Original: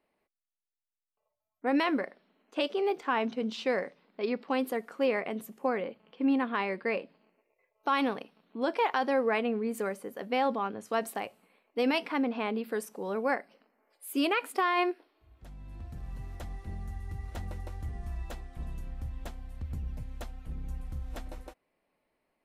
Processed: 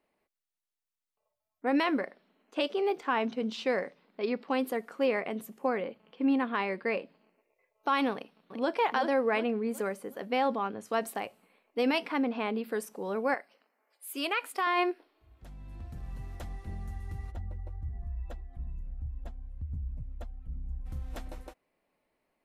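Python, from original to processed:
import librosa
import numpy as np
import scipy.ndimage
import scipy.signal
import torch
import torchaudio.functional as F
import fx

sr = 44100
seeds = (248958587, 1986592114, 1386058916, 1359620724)

y = fx.echo_throw(x, sr, start_s=8.13, length_s=0.63, ms=370, feedback_pct=40, wet_db=-6.0)
y = fx.highpass(y, sr, hz=770.0, slope=6, at=(13.34, 14.67))
y = fx.spec_expand(y, sr, power=1.5, at=(17.3, 20.85), fade=0.02)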